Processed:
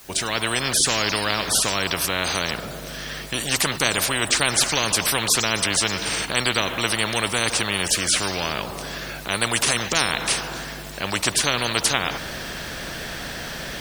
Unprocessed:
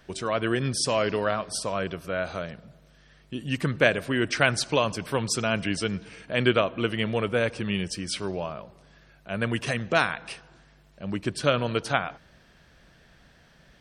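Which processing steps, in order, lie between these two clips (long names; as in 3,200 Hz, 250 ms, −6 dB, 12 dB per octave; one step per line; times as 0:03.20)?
fade in at the beginning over 0.65 s
high-shelf EQ 5,000 Hz +7 dB
bit-depth reduction 12 bits, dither triangular
every bin compressed towards the loudest bin 4 to 1
level +1.5 dB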